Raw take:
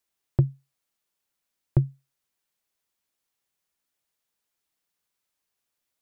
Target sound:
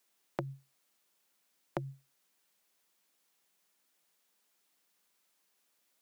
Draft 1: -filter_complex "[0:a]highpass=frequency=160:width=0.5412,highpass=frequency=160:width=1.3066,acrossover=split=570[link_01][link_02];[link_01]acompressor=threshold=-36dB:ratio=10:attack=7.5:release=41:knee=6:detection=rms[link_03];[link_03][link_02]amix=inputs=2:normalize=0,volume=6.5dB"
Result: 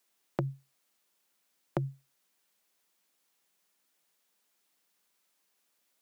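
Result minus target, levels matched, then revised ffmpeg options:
downward compressor: peak gain reduction −8.5 dB
-filter_complex "[0:a]highpass=frequency=160:width=0.5412,highpass=frequency=160:width=1.3066,acrossover=split=570[link_01][link_02];[link_01]acompressor=threshold=-45.5dB:ratio=10:attack=7.5:release=41:knee=6:detection=rms[link_03];[link_03][link_02]amix=inputs=2:normalize=0,volume=6.5dB"

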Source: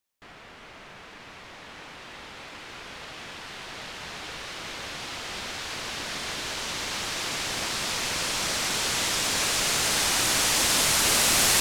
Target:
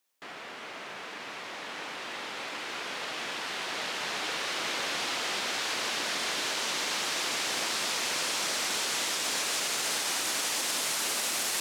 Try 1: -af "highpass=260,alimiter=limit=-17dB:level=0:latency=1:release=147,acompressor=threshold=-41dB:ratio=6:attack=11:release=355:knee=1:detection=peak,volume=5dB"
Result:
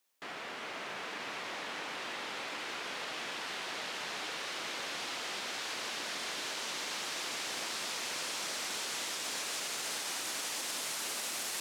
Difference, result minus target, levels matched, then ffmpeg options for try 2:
downward compressor: peak gain reduction +7 dB
-af "highpass=260,alimiter=limit=-17dB:level=0:latency=1:release=147,acompressor=threshold=-32.5dB:ratio=6:attack=11:release=355:knee=1:detection=peak,volume=5dB"

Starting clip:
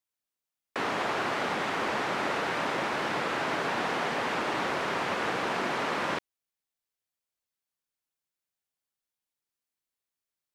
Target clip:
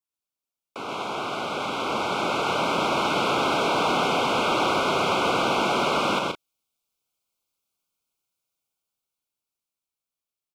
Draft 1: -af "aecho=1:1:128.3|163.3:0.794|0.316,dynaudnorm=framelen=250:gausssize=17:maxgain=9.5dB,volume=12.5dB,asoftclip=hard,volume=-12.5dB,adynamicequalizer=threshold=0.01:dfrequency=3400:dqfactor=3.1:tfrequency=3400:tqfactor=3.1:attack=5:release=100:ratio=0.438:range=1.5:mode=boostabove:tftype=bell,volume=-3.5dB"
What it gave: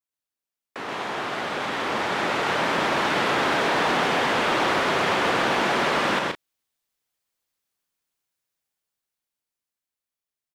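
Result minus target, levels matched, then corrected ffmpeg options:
2,000 Hz band +4.0 dB
-af "aecho=1:1:128.3|163.3:0.794|0.316,dynaudnorm=framelen=250:gausssize=17:maxgain=9.5dB,volume=12.5dB,asoftclip=hard,volume=-12.5dB,adynamicequalizer=threshold=0.01:dfrequency=3400:dqfactor=3.1:tfrequency=3400:tqfactor=3.1:attack=5:release=100:ratio=0.438:range=1.5:mode=boostabove:tftype=bell,asuperstop=centerf=1800:order=8:qfactor=2.8,volume=-3.5dB"

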